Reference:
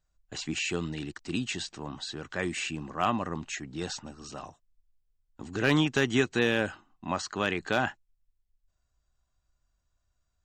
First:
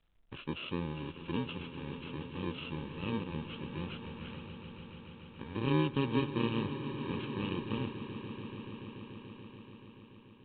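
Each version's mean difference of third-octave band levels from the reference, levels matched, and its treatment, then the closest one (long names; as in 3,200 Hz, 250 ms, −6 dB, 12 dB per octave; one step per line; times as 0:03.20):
10.5 dB: samples in bit-reversed order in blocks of 64 samples
dynamic equaliser 1,800 Hz, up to −7 dB, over −50 dBFS, Q 1.2
on a send: echo that builds up and dies away 144 ms, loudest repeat 5, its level −15 dB
on the sum: level −1.5 dB
mu-law 64 kbit/s 8,000 Hz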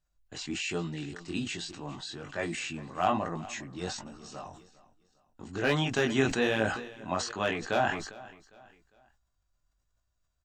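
4.0 dB: dynamic equaliser 680 Hz, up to +7 dB, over −46 dBFS, Q 2.6
chorus effect 1.2 Hz, delay 18 ms, depth 4.5 ms
on a send: repeating echo 403 ms, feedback 38%, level −20 dB
on the sum: level that may fall only so fast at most 72 dB per second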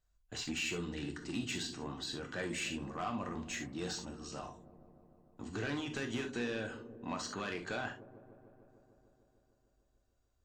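7.5 dB: downward compressor 6 to 1, threshold −28 dBFS, peak gain reduction 9 dB
soft clipping −26 dBFS, distortion −14 dB
on a send: delay with a low-pass on its return 150 ms, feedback 78%, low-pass 520 Hz, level −12 dB
on the sum: reverb whose tail is shaped and stops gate 90 ms flat, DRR 3.5 dB
level −4.5 dB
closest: second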